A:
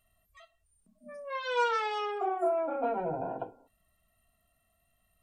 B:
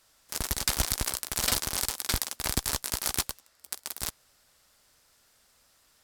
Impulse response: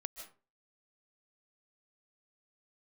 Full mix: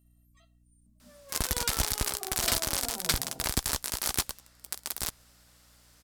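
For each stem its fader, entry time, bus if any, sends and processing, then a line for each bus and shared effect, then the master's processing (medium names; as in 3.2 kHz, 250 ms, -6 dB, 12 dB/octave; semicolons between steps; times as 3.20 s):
-12.5 dB, 0.00 s, no send, tone controls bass +15 dB, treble +14 dB
+3.0 dB, 1.00 s, no send, none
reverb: none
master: hum 60 Hz, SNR 33 dB; peak limiter -10 dBFS, peak gain reduction 7 dB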